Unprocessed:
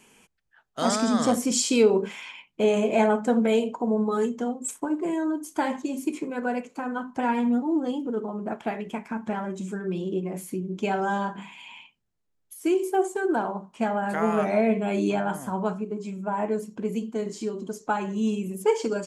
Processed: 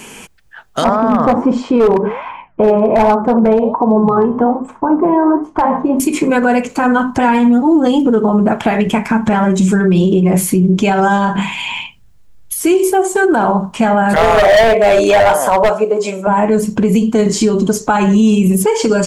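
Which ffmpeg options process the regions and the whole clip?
-filter_complex "[0:a]asettb=1/sr,asplit=3[s0][s1][s2];[s0]atrim=end=0.844[s3];[s1]atrim=start=0.84:end=6,asetpts=PTS-STARTPTS,afade=t=in:d=0.004:c=qsin,afade=t=out:st=5.156:d=0.004:c=qsin,flanger=delay=5.7:depth=8.8:regen=-84:speed=1.3:shape=sinusoidal,lowpass=f=1000:t=q:w=2.4,asoftclip=type=hard:threshold=0.126[s4];[s2]atrim=start=5.996[s5];[s3][s4]acrossfade=d=0.004:c1=hsin:c2=qsin[s6];[s6][s5]acrossfade=d=0.004:c1=qsin:c2=hsin,asettb=1/sr,asplit=3[s7][s8][s9];[s7]atrim=end=14.164[s10];[s8]atrim=start=14.16:end=16.27,asetpts=PTS-STARTPTS,afade=t=in:d=0.004:c=qsin,afade=t=out:st=2.106:d=0.004:c=qsin,highpass=f=550:t=q:w=3.3,asoftclip=type=hard:threshold=0.0891[s11];[s9]atrim=start=16.266[s12];[s10][s11]acrossfade=d=0.004:c1=hsin:c2=qsin[s13];[s13][s12]acrossfade=d=0.004:c1=qsin:c2=hsin,asubboost=boost=4:cutoff=130,acompressor=threshold=0.0355:ratio=6,alimiter=level_in=20:limit=0.891:release=50:level=0:latency=1,volume=0.708"

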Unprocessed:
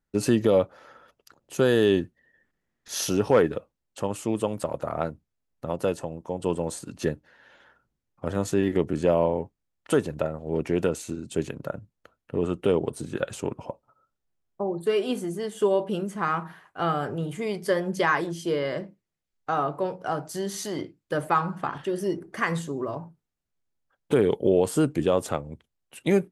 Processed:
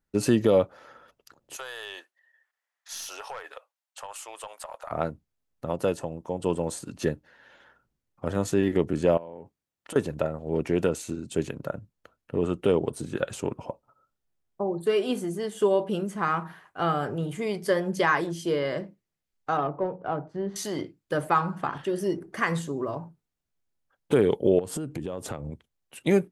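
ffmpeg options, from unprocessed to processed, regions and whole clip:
-filter_complex "[0:a]asettb=1/sr,asplit=3[s0][s1][s2];[s0]atrim=end=1.564[s3];[s1]atrim=start=1.56:end=4.91,asetpts=PTS-STARTPTS,afade=t=in:d=0.004:c=qsin,afade=t=out:st=3.346:d=0.004:c=qsin,highpass=f=730:w=0.5412,highpass=f=730:w=1.3066,aeval=exprs='(tanh(7.94*val(0)+0.3)-tanh(0.3))/7.94':c=same,acompressor=threshold=0.0224:ratio=10:attack=3.2:release=140:knee=1:detection=peak[s4];[s2]atrim=start=4.906[s5];[s3][s4]acrossfade=d=0.004:c1=hsin:c2=qsin[s6];[s6][s5]acrossfade=d=0.004:c1=qsin:c2=hsin,asettb=1/sr,asplit=3[s7][s8][s9];[s7]atrim=end=9.174[s10];[s8]atrim=start=9.17:end=9.96,asetpts=PTS-STARTPTS,afade=t=in:d=0.004:c=qsin,afade=t=out:st=0.786:d=0.004:c=qsin,highpass=f=130:p=1,acompressor=threshold=0.0158:ratio=10:attack=3.2:release=140:knee=1:detection=peak[s11];[s9]atrim=start=9.956[s12];[s10][s11]acrossfade=d=0.004:c1=hsin:c2=qsin[s13];[s13][s12]acrossfade=d=0.004:c1=qsin:c2=hsin,asettb=1/sr,asplit=3[s14][s15][s16];[s14]atrim=end=19.574[s17];[s15]atrim=start=19.57:end=20.56,asetpts=PTS-STARTPTS,afade=t=in:d=0.004:c=qsin,afade=t=out:st=0.986:d=0.004:c=qsin,highshelf=f=5300:g=-9,adynamicsmooth=sensitivity=0.5:basefreq=1400[s18];[s16]atrim=start=20.556[s19];[s17][s18]acrossfade=d=0.004:c1=hsin:c2=qsin[s20];[s20][s19]acrossfade=d=0.004:c1=qsin:c2=hsin,asettb=1/sr,asplit=3[s21][s22][s23];[s21]atrim=end=24.594[s24];[s22]atrim=start=24.59:end=25.51,asetpts=PTS-STARTPTS,afade=t=in:d=0.004:c=qsin,afade=t=out:st=0.916:d=0.004:c=qsin,lowshelf=f=380:g=6.5,acompressor=threshold=0.0355:ratio=8:attack=3.2:release=140:knee=1:detection=peak[s25];[s23]atrim=start=25.506[s26];[s24][s25]acrossfade=d=0.004:c1=hsin:c2=qsin[s27];[s27][s26]acrossfade=d=0.004:c1=qsin:c2=hsin"

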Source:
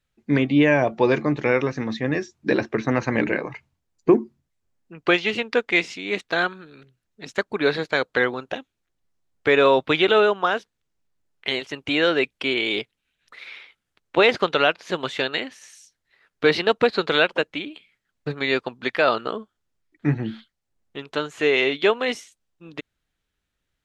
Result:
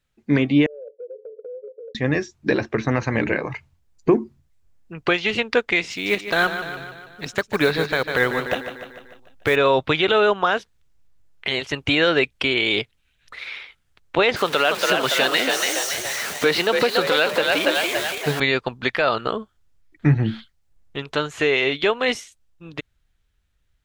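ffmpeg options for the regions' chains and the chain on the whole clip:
-filter_complex "[0:a]asettb=1/sr,asplit=3[s0][s1][s2];[s0]atrim=end=0.664[s3];[s1]atrim=start=0.66:end=1.95,asetpts=PTS-STARTPTS,afade=t=in:d=0.004:c=qsin,afade=t=out:st=1.286:d=0.004:c=qsin,asuperpass=centerf=480:order=8:qfactor=3.9,acompressor=threshold=0.0158:ratio=6:attack=3.2:release=140:knee=1:detection=peak[s4];[s2]atrim=start=1.946[s5];[s3][s4]acrossfade=d=0.004:c1=hsin:c2=qsin[s6];[s6][s5]acrossfade=d=0.004:c1=qsin:c2=hsin,asettb=1/sr,asplit=3[s7][s8][s9];[s7]atrim=end=5.914[s10];[s8]atrim=start=5.91:end=9.56,asetpts=PTS-STARTPTS,afade=t=in:d=0.004:c=qsin,afade=t=out:st=3.646:d=0.004:c=qsin,acrusher=bits=6:mode=log:mix=0:aa=0.000001,aecho=1:1:148|296|444|592|740|888:0.266|0.149|0.0834|0.0467|0.0262|0.0147,atrim=end_sample=160965[s11];[s9]atrim=start=9.556[s12];[s10][s11]acrossfade=d=0.004:c1=hsin:c2=qsin[s13];[s13][s12]acrossfade=d=0.004:c1=qsin:c2=hsin,asettb=1/sr,asplit=3[s14][s15][s16];[s14]atrim=end=14.364[s17];[s15]atrim=start=14.36:end=18.4,asetpts=PTS-STARTPTS,afade=t=in:d=0.004:c=qsin,afade=t=out:st=4.036:d=0.004:c=qsin,aeval=exprs='val(0)+0.5*0.0355*sgn(val(0))':c=same,highpass=210,asplit=7[s18][s19][s20][s21][s22][s23][s24];[s19]adelay=283,afreqshift=49,volume=0.531[s25];[s20]adelay=566,afreqshift=98,volume=0.266[s26];[s21]adelay=849,afreqshift=147,volume=0.133[s27];[s22]adelay=1132,afreqshift=196,volume=0.0661[s28];[s23]adelay=1415,afreqshift=245,volume=0.0331[s29];[s24]adelay=1698,afreqshift=294,volume=0.0166[s30];[s18][s25][s26][s27][s28][s29][s30]amix=inputs=7:normalize=0,atrim=end_sample=178164[s31];[s16]atrim=start=18.396[s32];[s17][s31]acrossfade=d=0.004:c1=hsin:c2=qsin[s33];[s33][s32]acrossfade=d=0.004:c1=qsin:c2=hsin,asubboost=boost=3.5:cutoff=120,dynaudnorm=f=890:g=7:m=3.76,alimiter=limit=0.335:level=0:latency=1:release=201,volume=1.33"

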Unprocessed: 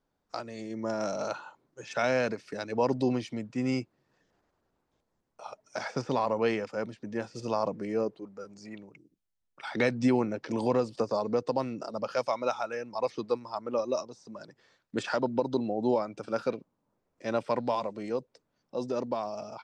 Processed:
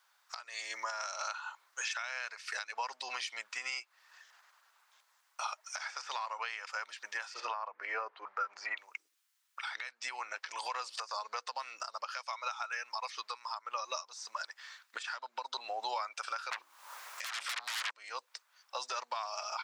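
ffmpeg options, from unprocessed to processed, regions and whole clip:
-filter_complex "[0:a]asettb=1/sr,asplit=3[s0][s1][s2];[s0]atrim=end=7.344[s3];[s1]atrim=start=7.34:end=8.77,asetpts=PTS-STARTPTS,afade=t=in:d=0.004:c=qsin,afade=t=out:st=1.426:d=0.004:c=qsin,lowpass=1800,acontrast=81[s4];[s2]atrim=start=8.766[s5];[s3][s4]acrossfade=d=0.004:c1=hsin:c2=qsin[s6];[s6][s5]acrossfade=d=0.004:c1=qsin:c2=hsin,asettb=1/sr,asplit=3[s7][s8][s9];[s7]atrim=end=16.514[s10];[s8]atrim=start=16.51:end=17.91,asetpts=PTS-STARTPTS,afade=t=in:d=0.004:c=qsin,afade=t=out:st=1.396:d=0.004:c=qsin,bandreject=f=60:t=h:w=6,bandreject=f=120:t=h:w=6,bandreject=f=180:t=h:w=6,bandreject=f=240:t=h:w=6,bandreject=f=300:t=h:w=6,bandreject=f=360:t=h:w=6,acompressor=threshold=0.0355:ratio=5:attack=3.2:release=140:knee=1:detection=peak,aeval=exprs='0.0944*sin(PI/2*10*val(0)/0.0944)':c=same[s11];[s9]atrim=start=17.906[s12];[s10][s11]acrossfade=d=0.004:c1=hsin:c2=qsin[s13];[s13][s12]acrossfade=d=0.004:c1=qsin:c2=hsin,highpass=f=1100:w=0.5412,highpass=f=1100:w=1.3066,acompressor=threshold=0.00355:ratio=6,alimiter=level_in=8.41:limit=0.0631:level=0:latency=1:release=414,volume=0.119,volume=7.08"

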